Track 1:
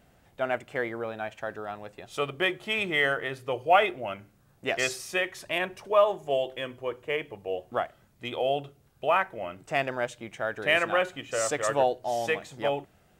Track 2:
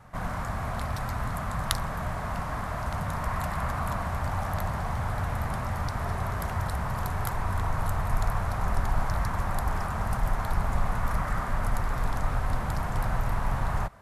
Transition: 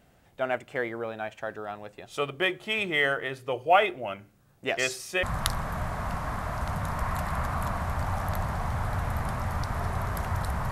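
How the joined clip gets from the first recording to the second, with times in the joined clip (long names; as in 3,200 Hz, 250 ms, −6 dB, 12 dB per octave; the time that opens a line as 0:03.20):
track 1
0:05.23: continue with track 2 from 0:01.48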